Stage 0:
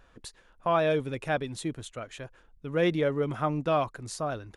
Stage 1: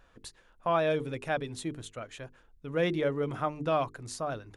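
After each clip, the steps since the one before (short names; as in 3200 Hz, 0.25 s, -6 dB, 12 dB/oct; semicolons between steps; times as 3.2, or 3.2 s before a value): notches 50/100/150/200/250/300/350/400/450 Hz; gain -2 dB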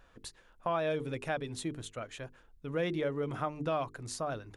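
compressor 2:1, threshold -32 dBFS, peak gain reduction 6 dB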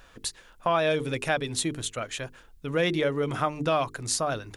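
high shelf 2100 Hz +8.5 dB; gain +6.5 dB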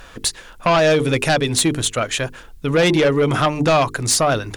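sine folder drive 10 dB, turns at -9.5 dBFS; gain -1 dB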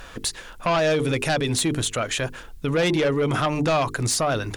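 limiter -16.5 dBFS, peak gain reduction 7.5 dB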